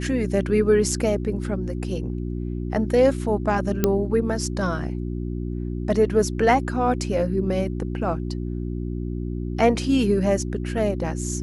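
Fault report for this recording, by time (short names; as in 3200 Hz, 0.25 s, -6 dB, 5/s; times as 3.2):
hum 60 Hz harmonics 6 -28 dBFS
3.84 pop -5 dBFS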